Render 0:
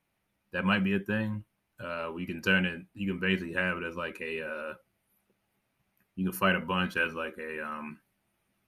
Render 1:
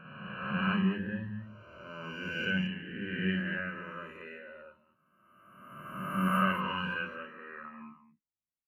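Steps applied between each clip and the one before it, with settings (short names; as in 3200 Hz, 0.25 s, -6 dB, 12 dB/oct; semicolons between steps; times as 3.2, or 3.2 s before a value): spectral swells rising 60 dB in 2.65 s; on a send: tapped delay 53/54/219/220 ms -6/-6/-7.5/-9 dB; on the sum: spectral expander 1.5:1; gain -9 dB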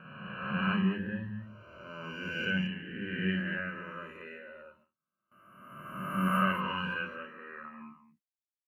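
gate with hold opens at -55 dBFS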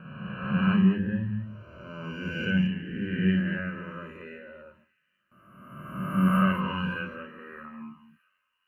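low shelf 330 Hz +11 dB; thin delay 0.617 s, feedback 48%, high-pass 2300 Hz, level -24 dB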